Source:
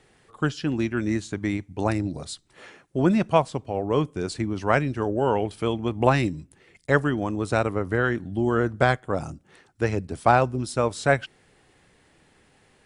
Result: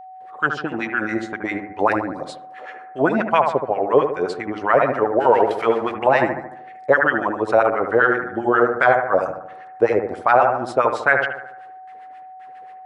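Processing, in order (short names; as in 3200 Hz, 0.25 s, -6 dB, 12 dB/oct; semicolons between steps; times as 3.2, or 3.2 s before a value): 5.2–5.94 zero-crossing step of -34.5 dBFS; gate with hold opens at -49 dBFS; LFO band-pass sine 7.5 Hz 510–1900 Hz; on a send: analogue delay 74 ms, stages 1024, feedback 51%, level -7 dB; on the sum: whine 750 Hz -51 dBFS; maximiser +17 dB; gain -3 dB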